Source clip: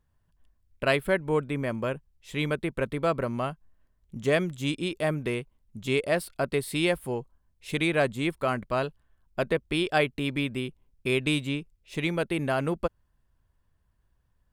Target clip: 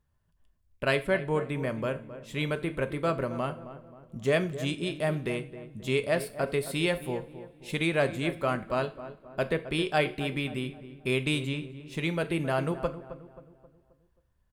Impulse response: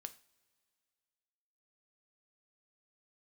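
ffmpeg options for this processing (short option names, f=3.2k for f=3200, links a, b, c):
-filter_complex "[0:a]asettb=1/sr,asplit=3[a][b][c];[a]atrim=end=0.954[d];[b]atrim=start=0.95:end=1.35,asetpts=PTS-STARTPTS,afade=t=in:d=0.004:c=qsin,afade=t=out:st=0.396:d=0.004:c=qsin,lowpass=9.6k[e];[c]atrim=start=1.346[f];[d][e]acrossfade=d=0.004:c1=hsin:c2=qsin[g];[g][f]acrossfade=d=0.004:c1=qsin:c2=hsin,asplit=2[h][i];[i]adelay=266,lowpass=f=1.4k:p=1,volume=-12.5dB,asplit=2[j][k];[k]adelay=266,lowpass=f=1.4k:p=1,volume=0.47,asplit=2[l][m];[m]adelay=266,lowpass=f=1.4k:p=1,volume=0.47,asplit=2[n][o];[o]adelay=266,lowpass=f=1.4k:p=1,volume=0.47,asplit=2[p][q];[q]adelay=266,lowpass=f=1.4k:p=1,volume=0.47[r];[h][j][l][n][p][r]amix=inputs=6:normalize=0[s];[1:a]atrim=start_sample=2205[t];[s][t]afir=irnorm=-1:irlink=0,volume=3dB"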